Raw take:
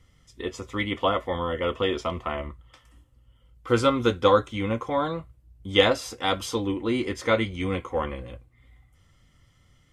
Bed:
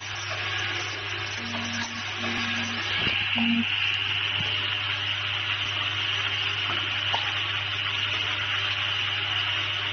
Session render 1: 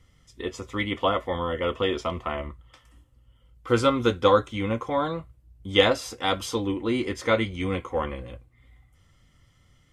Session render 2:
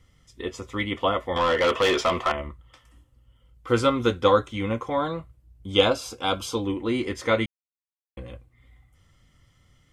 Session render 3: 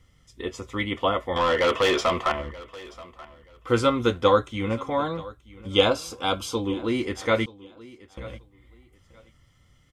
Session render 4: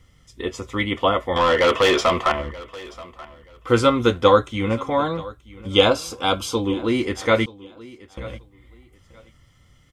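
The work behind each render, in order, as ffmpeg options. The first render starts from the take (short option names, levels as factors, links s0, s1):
-af anull
-filter_complex "[0:a]asettb=1/sr,asplit=3[s0][s1][s2];[s0]atrim=end=1.364[s3];[s1]atrim=start=1.36:end=2.32,asetpts=PTS-STARTPTS,afade=t=in:d=0.004:c=qsin,afade=t=out:st=0.956:d=0.004:c=qsin,asplit=2[s4][s5];[s5]highpass=f=720:p=1,volume=11.2,asoftclip=type=tanh:threshold=0.224[s6];[s4][s6]amix=inputs=2:normalize=0,lowpass=f=4500:p=1,volume=0.501[s7];[s2]atrim=start=2.316[s8];[s3][s7]acrossfade=d=0.004:c1=hsin:c2=qsin[s9];[s9][s8]acrossfade=d=0.004:c1=qsin:c2=hsin,asettb=1/sr,asplit=3[s10][s11][s12];[s10]atrim=end=5.724[s13];[s11]atrim=start=5.72:end=6.65,asetpts=PTS-STARTPTS,afade=t=in:d=0.004:c=qsin,afade=t=out:st=0.926:d=0.004:c=qsin,asuperstop=centerf=1900:order=4:qfactor=4.2[s14];[s12]atrim=start=6.646[s15];[s13][s14]acrossfade=d=0.004:c1=hsin:c2=qsin[s16];[s16][s15]acrossfade=d=0.004:c1=qsin:c2=hsin,asplit=3[s17][s18][s19];[s17]atrim=end=7.46,asetpts=PTS-STARTPTS,afade=t=out:st=7.456:d=0.004:c=hsin[s20];[s18]atrim=start=7.46:end=8.17,asetpts=PTS-STARTPTS,volume=0[s21];[s19]atrim=start=8.17,asetpts=PTS-STARTPTS,afade=t=in:d=0.004:c=hsin[s22];[s20][s21][s22]concat=n=3:v=0:a=1"
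-af "aecho=1:1:930|1860:0.1|0.022"
-af "volume=1.68,alimiter=limit=0.891:level=0:latency=1"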